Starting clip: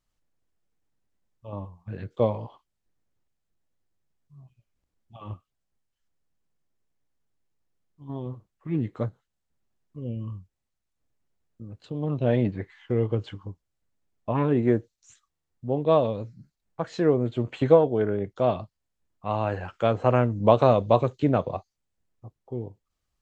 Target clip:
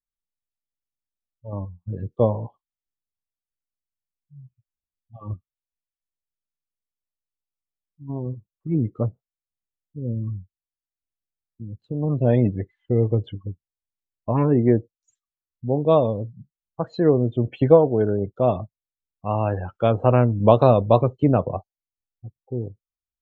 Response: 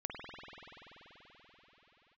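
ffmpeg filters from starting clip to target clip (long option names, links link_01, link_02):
-af "equalizer=frequency=1600:width_type=o:width=1.2:gain=-3.5,afftdn=noise_reduction=27:noise_floor=-40,lowshelf=frequency=100:gain=6.5,volume=3.5dB"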